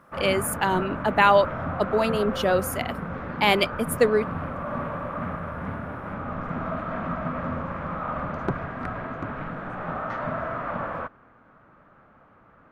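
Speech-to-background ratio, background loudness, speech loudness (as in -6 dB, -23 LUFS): 8.0 dB, -31.5 LUFS, -23.5 LUFS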